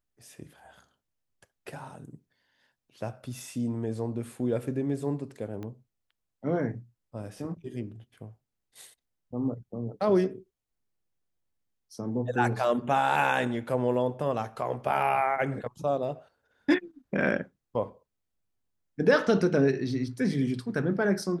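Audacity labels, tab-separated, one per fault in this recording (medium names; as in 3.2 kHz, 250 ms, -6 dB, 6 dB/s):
5.630000	5.630000	pop -27 dBFS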